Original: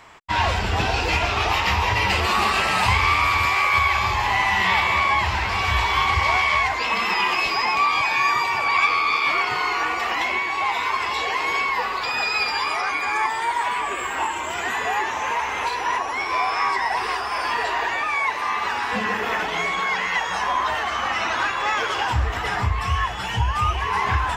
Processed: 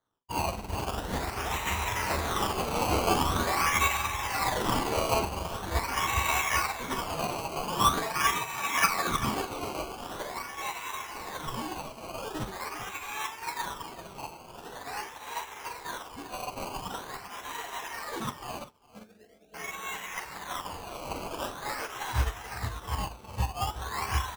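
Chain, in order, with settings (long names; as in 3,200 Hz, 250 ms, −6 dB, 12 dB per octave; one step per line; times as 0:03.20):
0:18.64–0:19.54: elliptic low-pass filter 660 Hz, stop band 40 dB
hum removal 125.5 Hz, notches 17
sample-and-hold swept by an LFO 17×, swing 100% 0.44 Hz
0:21.91–0:23.08: double-tracking delay 18 ms −10 dB
multi-tap delay 42/395 ms −7.5/−8.5 dB
expander for the loud parts 2.5 to 1, over −36 dBFS
level −3.5 dB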